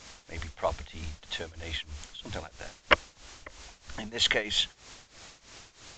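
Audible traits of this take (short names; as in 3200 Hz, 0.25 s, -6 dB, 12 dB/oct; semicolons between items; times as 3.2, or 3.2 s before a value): a quantiser's noise floor 8-bit, dither triangular; tremolo triangle 3.1 Hz, depth 90%; µ-law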